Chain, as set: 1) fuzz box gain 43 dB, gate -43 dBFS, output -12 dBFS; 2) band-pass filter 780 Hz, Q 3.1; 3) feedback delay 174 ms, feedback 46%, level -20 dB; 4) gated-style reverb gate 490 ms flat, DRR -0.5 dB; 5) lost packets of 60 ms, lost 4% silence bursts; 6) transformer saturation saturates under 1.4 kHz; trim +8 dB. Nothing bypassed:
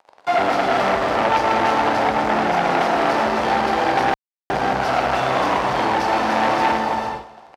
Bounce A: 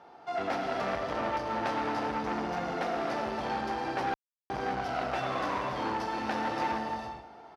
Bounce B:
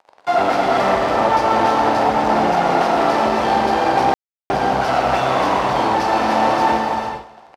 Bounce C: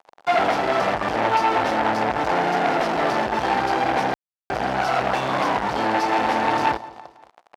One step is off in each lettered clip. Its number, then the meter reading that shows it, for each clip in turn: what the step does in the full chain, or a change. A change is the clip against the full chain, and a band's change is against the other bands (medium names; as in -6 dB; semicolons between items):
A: 1, distortion -4 dB; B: 6, crest factor change -2.0 dB; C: 4, loudness change -2.5 LU